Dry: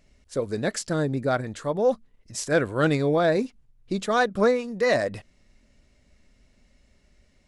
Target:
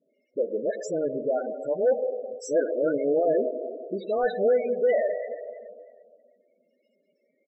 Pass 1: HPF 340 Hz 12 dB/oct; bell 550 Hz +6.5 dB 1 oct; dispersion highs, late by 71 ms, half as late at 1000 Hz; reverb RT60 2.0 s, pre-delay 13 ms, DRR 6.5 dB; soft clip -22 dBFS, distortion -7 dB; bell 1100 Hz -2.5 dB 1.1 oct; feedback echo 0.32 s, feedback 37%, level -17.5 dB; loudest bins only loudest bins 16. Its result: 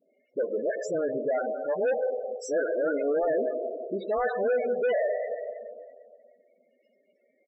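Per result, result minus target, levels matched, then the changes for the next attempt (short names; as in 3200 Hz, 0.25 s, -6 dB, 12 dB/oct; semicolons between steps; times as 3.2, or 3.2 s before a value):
soft clip: distortion +9 dB; 1000 Hz band +3.0 dB
change: soft clip -12.5 dBFS, distortion -16 dB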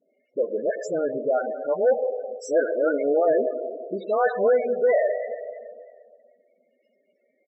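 1000 Hz band +3.0 dB
change: second bell 1100 Hz -13 dB 1.1 oct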